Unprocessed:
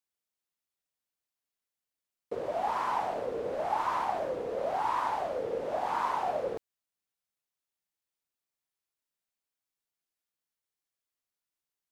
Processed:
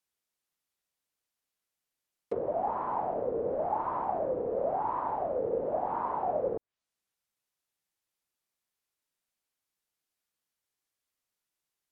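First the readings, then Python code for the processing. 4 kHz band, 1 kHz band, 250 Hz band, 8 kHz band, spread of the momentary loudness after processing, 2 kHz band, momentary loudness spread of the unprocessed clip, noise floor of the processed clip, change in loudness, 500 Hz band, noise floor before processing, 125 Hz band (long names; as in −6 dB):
below −20 dB, −1.5 dB, +3.5 dB, can't be measured, 2 LU, −10.5 dB, 5 LU, below −85 dBFS, 0.0 dB, +2.5 dB, below −85 dBFS, +3.5 dB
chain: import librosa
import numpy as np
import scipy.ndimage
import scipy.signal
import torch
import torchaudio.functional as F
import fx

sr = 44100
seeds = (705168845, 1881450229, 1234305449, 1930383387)

y = fx.env_lowpass_down(x, sr, base_hz=740.0, full_db=-32.0)
y = y * librosa.db_to_amplitude(3.5)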